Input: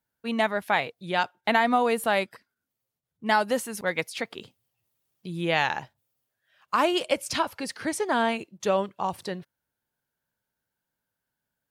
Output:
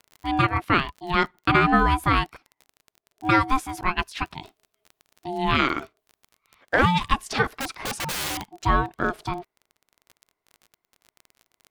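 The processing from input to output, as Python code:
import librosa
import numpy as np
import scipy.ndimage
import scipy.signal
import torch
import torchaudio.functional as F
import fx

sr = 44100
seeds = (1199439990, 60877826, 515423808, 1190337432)

y = fx.high_shelf(x, sr, hz=4800.0, db=-11.0)
y = fx.dmg_crackle(y, sr, seeds[0], per_s=35.0, level_db=-40.0)
y = fx.overflow_wrap(y, sr, gain_db=27.0, at=(7.56, 8.51))
y = y * np.sin(2.0 * np.pi * 530.0 * np.arange(len(y)) / sr)
y = y * 10.0 ** (7.0 / 20.0)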